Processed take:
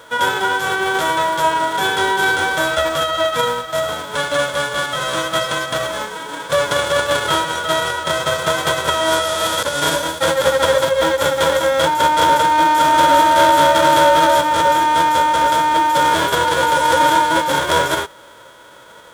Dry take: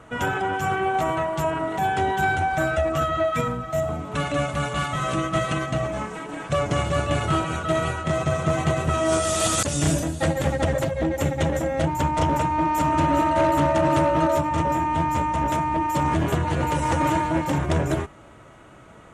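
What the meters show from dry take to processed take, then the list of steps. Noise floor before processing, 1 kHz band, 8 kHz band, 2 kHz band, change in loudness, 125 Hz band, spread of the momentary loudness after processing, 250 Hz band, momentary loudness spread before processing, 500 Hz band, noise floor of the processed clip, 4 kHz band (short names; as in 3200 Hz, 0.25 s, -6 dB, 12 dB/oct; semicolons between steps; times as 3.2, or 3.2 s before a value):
-47 dBFS, +9.5 dB, +7.0 dB, +11.0 dB, +7.5 dB, -7.5 dB, 8 LU, -1.0 dB, 6 LU, +7.0 dB, -42 dBFS, +15.0 dB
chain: spectral whitening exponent 0.3; small resonant body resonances 520/960/1400/3300 Hz, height 18 dB, ringing for 20 ms; gain -4 dB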